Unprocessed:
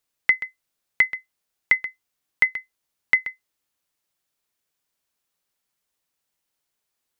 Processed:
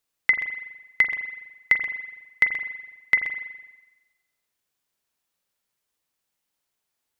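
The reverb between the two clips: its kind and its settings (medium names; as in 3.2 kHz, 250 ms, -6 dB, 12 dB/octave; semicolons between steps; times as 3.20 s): spring tank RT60 1.1 s, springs 41 ms, chirp 25 ms, DRR 6.5 dB; trim -1 dB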